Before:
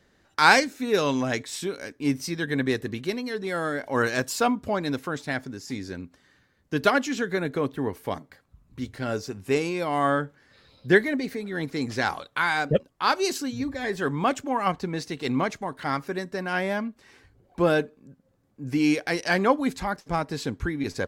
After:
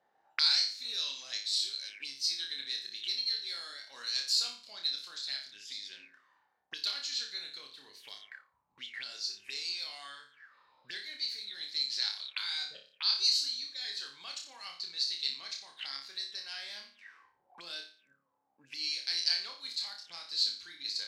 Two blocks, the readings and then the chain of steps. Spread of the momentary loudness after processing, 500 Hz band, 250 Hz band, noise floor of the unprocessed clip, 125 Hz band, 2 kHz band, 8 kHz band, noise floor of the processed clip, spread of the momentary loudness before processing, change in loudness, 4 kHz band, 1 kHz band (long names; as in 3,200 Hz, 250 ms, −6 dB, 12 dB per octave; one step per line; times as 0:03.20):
17 LU, −34.5 dB, below −35 dB, −65 dBFS, below −40 dB, −17.0 dB, −4.5 dB, −76 dBFS, 11 LU, −7.0 dB, +5.0 dB, −26.0 dB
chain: downward compressor 2.5 to 1, threshold −25 dBFS, peak gain reduction 9.5 dB
high-shelf EQ 2,300 Hz +11 dB
on a send: flutter between parallel walls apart 5 metres, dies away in 0.42 s
on the sum: envelope filter 760–4,300 Hz, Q 8.3, up, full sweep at −26 dBFS
level +4 dB